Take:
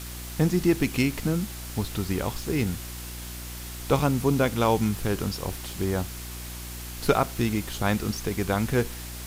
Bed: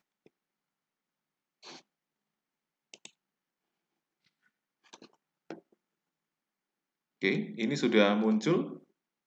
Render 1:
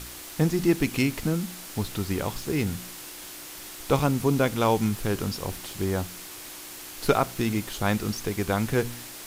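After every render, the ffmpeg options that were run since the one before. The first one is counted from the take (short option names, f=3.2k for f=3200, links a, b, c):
-af "bandreject=f=60:t=h:w=4,bandreject=f=120:t=h:w=4,bandreject=f=180:t=h:w=4,bandreject=f=240:t=h:w=4"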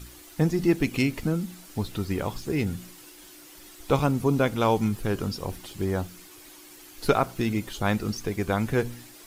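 -af "afftdn=nr=10:nf=-41"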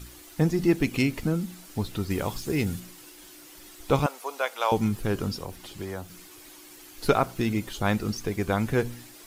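-filter_complex "[0:a]asettb=1/sr,asplit=3[a][b][c];[a]atrim=end=2.104[d];[b]atrim=start=2.1:end=2.8,asetpts=PTS-STARTPTS,afade=t=in:d=0.004:c=qsin,afade=t=out:st=0.696:d=0.004:c=qsin,highshelf=f=3.8k:g=5.5[e];[c]atrim=start=2.796[f];[d][e]acrossfade=d=0.004:c1=hsin:c2=qsin[g];[g][f]acrossfade=d=0.004:c1=qsin:c2=hsin,asettb=1/sr,asplit=3[h][i][j];[h]atrim=end=4.064[k];[i]atrim=start=4.06:end=4.72,asetpts=PTS-STARTPTS,afade=t=in:d=0.004:c=qsin,afade=t=out:st=0.656:d=0.004:c=qsin,highpass=f=590:w=0.5412,highpass=f=590:w=1.3066[l];[j]atrim=start=4.716[m];[k][l]acrossfade=d=0.004:c1=hsin:c2=qsin[n];[n][m]acrossfade=d=0.004:c1=qsin:c2=hsin,asettb=1/sr,asplit=3[o][p][q];[o]atrim=end=5.394[r];[p]atrim=start=5.39:end=6.1,asetpts=PTS-STARTPTS,afade=t=in:d=0.004:c=qsin,afade=t=out:st=0.706:d=0.004:c=qsin,acrossover=split=250|500|6500[s][t][u][v];[s]acompressor=threshold=-41dB:ratio=3[w];[t]acompressor=threshold=-44dB:ratio=3[x];[u]acompressor=threshold=-38dB:ratio=3[y];[v]acompressor=threshold=-51dB:ratio=3[z];[w][x][y][z]amix=inputs=4:normalize=0[aa];[q]atrim=start=6.096[ab];[r][aa]acrossfade=d=0.004:c1=hsin:c2=qsin[ac];[ac][ab]acrossfade=d=0.004:c1=qsin:c2=hsin"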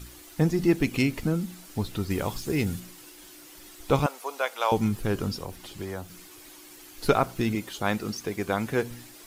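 -filter_complex "[0:a]asettb=1/sr,asplit=3[a][b][c];[a]atrim=end=7.554[d];[b]atrim=start=7.55:end=8.91,asetpts=PTS-STARTPTS,afade=t=in:d=0.004:c=qsin,afade=t=out:st=1.356:d=0.004:c=qsin,highpass=f=210:p=1[e];[c]atrim=start=8.906[f];[d][e]acrossfade=d=0.004:c1=hsin:c2=qsin[g];[g][f]acrossfade=d=0.004:c1=qsin:c2=hsin"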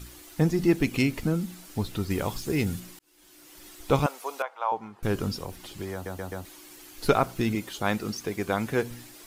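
-filter_complex "[0:a]asettb=1/sr,asplit=3[a][b][c];[a]atrim=end=4.424[d];[b]atrim=start=4.42:end=5.03,asetpts=PTS-STARTPTS,afade=t=in:d=0.004:c=qsin,afade=t=out:st=0.606:d=0.004:c=qsin,bandpass=f=920:t=q:w=2[e];[c]atrim=start=5.026[f];[d][e]acrossfade=d=0.004:c1=hsin:c2=qsin[g];[g][f]acrossfade=d=0.004:c1=qsin:c2=hsin,asplit=6[h][i][j][k][l][m];[h]atrim=end=2.99,asetpts=PTS-STARTPTS,afade=t=out:st=2.986:d=0.004:c=hsin[n];[i]atrim=start=2.99:end=6.062,asetpts=PTS-STARTPTS,afade=t=in:d=0.68[o];[j]atrim=start=5.928:end=6.062[p];[k]atrim=start=5.928:end=6.062[q];[l]atrim=start=5.928:end=6.062[r];[m]atrim=start=6.448[s];[n][o]concat=n=2:v=0:a=1[t];[t][p]acrossfade=d=0.004:c1=hsin:c2=hsin[u];[u][q]acrossfade=d=0.004:c1=hsin:c2=hsin[v];[v][r]acrossfade=d=0.004:c1=hsin:c2=hsin[w];[w][s]acrossfade=d=0.004:c1=hsin:c2=hsin"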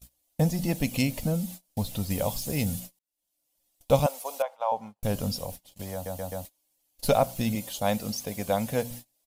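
-af "agate=range=-30dB:threshold=-40dB:ratio=16:detection=peak,firequalizer=gain_entry='entry(250,0);entry(360,-15);entry(540,7);entry(1300,-10);entry(3000,0);entry(11000,8)':delay=0.05:min_phase=1"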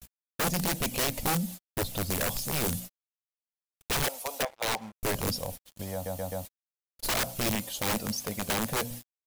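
-af "acrusher=bits=7:mix=0:aa=0.5,aeval=exprs='(mod(13.3*val(0)+1,2)-1)/13.3':c=same"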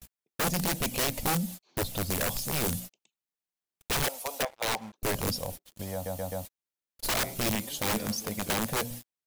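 -filter_complex "[1:a]volume=-19dB[a];[0:a][a]amix=inputs=2:normalize=0"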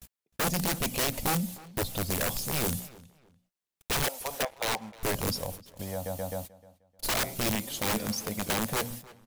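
-filter_complex "[0:a]asplit=2[a][b];[b]adelay=307,lowpass=f=3.8k:p=1,volume=-20dB,asplit=2[c][d];[d]adelay=307,lowpass=f=3.8k:p=1,volume=0.28[e];[a][c][e]amix=inputs=3:normalize=0"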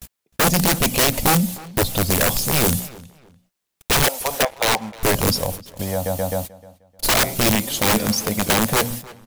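-af "volume=11.5dB"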